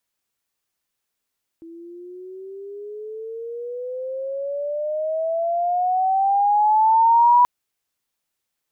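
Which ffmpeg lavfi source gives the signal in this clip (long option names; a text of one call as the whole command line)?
ffmpeg -f lavfi -i "aevalsrc='pow(10,(-10+27*(t/5.83-1))/20)*sin(2*PI*328*5.83/(19*log(2)/12)*(exp(19*log(2)/12*t/5.83)-1))':duration=5.83:sample_rate=44100" out.wav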